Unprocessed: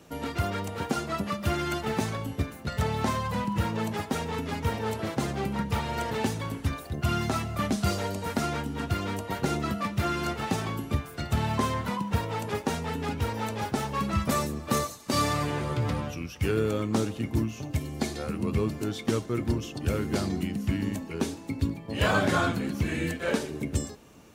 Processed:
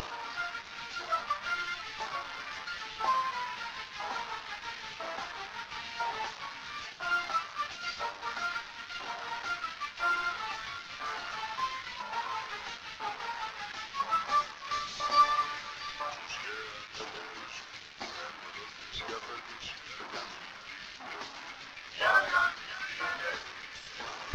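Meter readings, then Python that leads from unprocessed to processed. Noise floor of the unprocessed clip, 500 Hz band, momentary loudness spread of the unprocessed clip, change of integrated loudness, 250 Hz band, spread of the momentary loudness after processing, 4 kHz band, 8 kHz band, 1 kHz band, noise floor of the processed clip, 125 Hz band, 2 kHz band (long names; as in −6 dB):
−44 dBFS, −13.5 dB, 5 LU, −5.0 dB, −26.0 dB, 13 LU, −1.0 dB, −10.0 dB, 0.0 dB, −48 dBFS, −30.0 dB, +1.0 dB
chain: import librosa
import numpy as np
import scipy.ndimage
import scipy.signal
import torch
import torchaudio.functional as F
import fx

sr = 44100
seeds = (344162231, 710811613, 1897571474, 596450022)

p1 = fx.delta_mod(x, sr, bps=32000, step_db=-25.0)
p2 = p1 + 10.0 ** (-8.0 / 20.0) * np.pad(p1, (int(671 * sr / 1000.0), 0))[:len(p1)]
p3 = fx.filter_lfo_highpass(p2, sr, shape='saw_up', hz=1.0, low_hz=920.0, high_hz=2000.0, q=0.95)
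p4 = fx.sample_hold(p3, sr, seeds[0], rate_hz=3500.0, jitter_pct=0)
p5 = p3 + (p4 * librosa.db_to_amplitude(-11.0))
p6 = fx.low_shelf(p5, sr, hz=270.0, db=6.0)
y = fx.spectral_expand(p6, sr, expansion=1.5)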